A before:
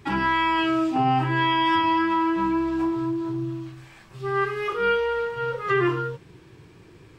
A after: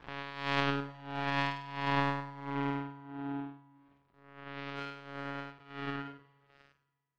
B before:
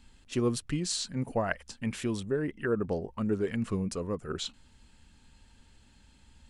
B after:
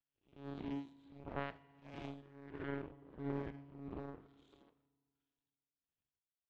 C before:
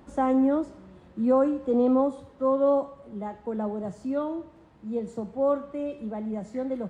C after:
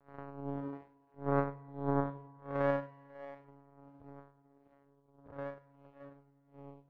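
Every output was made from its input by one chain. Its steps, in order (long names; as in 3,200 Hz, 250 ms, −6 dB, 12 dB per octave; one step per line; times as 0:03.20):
spectrum smeared in time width 216 ms
one-pitch LPC vocoder at 8 kHz 140 Hz
high-pass filter 52 Hz 6 dB per octave
echo through a band-pass that steps 272 ms, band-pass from 290 Hz, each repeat 1.4 octaves, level −2 dB
amplitude tremolo 1.5 Hz, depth 68%
power curve on the samples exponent 2
feedback delay network reverb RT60 2.1 s, low-frequency decay 1×, high-frequency decay 0.85×, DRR 19 dB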